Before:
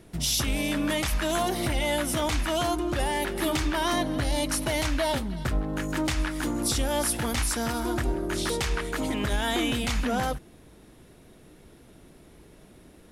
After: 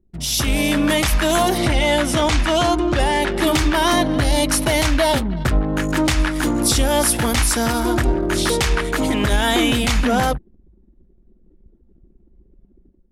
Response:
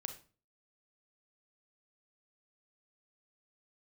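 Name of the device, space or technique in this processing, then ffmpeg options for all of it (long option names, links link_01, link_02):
voice memo with heavy noise removal: -filter_complex "[0:a]asettb=1/sr,asplit=3[link_01][link_02][link_03];[link_01]atrim=end=1.584[link_04];[link_02]atrim=start=1.58:end=3.47,asetpts=PTS-STARTPTS,afade=type=in:duration=0.004:curve=qsin,afade=type=out:start_time=1.886:duration=0.004:curve=qsin,lowpass=8100[link_05];[link_03]atrim=start=3.466[link_06];[link_04][link_05]acrossfade=duration=0.004:curve1=hsin:curve2=qsin[link_07];[link_07][link_06]acrossfade=duration=0.004:curve1=qsin:curve2=hsin,anlmdn=0.398,dynaudnorm=framelen=150:gausssize=5:maxgain=9.5dB"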